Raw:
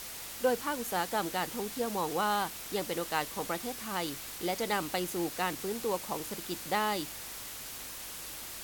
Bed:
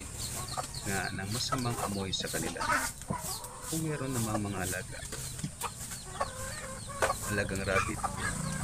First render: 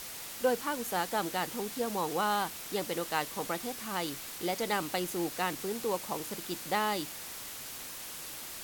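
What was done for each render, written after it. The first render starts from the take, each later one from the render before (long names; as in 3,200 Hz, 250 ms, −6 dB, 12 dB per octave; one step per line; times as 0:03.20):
hum removal 50 Hz, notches 2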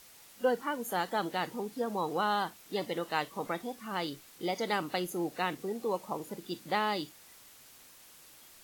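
noise reduction from a noise print 13 dB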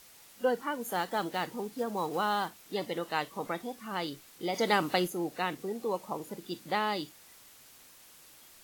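0:00.81–0:02.62: one scale factor per block 5 bits
0:04.54–0:05.08: clip gain +5 dB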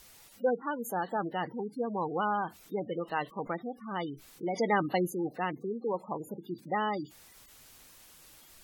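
gate on every frequency bin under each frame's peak −15 dB strong
low-shelf EQ 90 Hz +12 dB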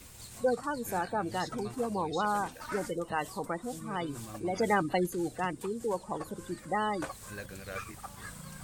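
mix in bed −11 dB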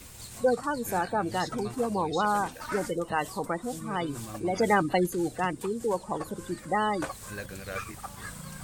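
level +4 dB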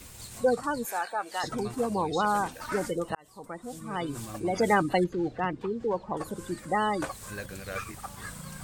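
0:00.85–0:01.44: high-pass filter 760 Hz
0:03.15–0:04.18: fade in linear
0:05.04–0:06.17: high-frequency loss of the air 230 metres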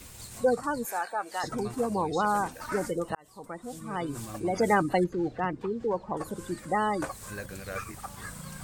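dynamic equaliser 3,300 Hz, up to −6 dB, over −51 dBFS, Q 1.6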